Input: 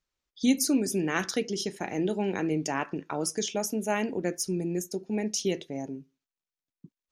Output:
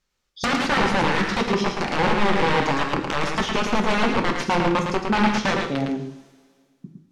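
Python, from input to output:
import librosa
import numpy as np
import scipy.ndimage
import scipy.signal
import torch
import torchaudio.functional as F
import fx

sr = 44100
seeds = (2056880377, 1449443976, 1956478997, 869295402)

y = (np.mod(10.0 ** (24.0 / 20.0) * x + 1.0, 2.0) - 1.0) / 10.0 ** (24.0 / 20.0)
y = fx.high_shelf(y, sr, hz=12000.0, db=-6.5)
y = fx.rev_double_slope(y, sr, seeds[0], early_s=0.55, late_s=2.1, knee_db=-20, drr_db=4.5)
y = fx.env_lowpass_down(y, sr, base_hz=3000.0, full_db=-29.0)
y = y + 10.0 ** (-5.0 / 20.0) * np.pad(y, (int(110 * sr / 1000.0), 0))[:len(y)]
y = y * librosa.db_to_amplitude(9.0)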